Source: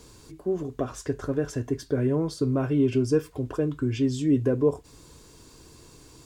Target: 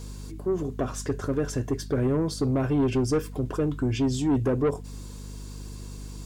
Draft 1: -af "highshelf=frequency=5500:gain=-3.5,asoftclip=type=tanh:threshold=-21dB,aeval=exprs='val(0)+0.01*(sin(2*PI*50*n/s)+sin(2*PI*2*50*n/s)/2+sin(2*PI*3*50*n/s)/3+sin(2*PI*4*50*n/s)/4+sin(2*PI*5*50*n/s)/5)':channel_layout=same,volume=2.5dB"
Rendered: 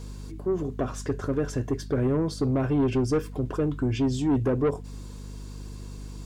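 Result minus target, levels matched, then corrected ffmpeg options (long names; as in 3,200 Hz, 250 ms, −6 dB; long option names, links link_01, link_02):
8,000 Hz band −4.5 dB
-af "highshelf=frequency=5500:gain=3.5,asoftclip=type=tanh:threshold=-21dB,aeval=exprs='val(0)+0.01*(sin(2*PI*50*n/s)+sin(2*PI*2*50*n/s)/2+sin(2*PI*3*50*n/s)/3+sin(2*PI*4*50*n/s)/4+sin(2*PI*5*50*n/s)/5)':channel_layout=same,volume=2.5dB"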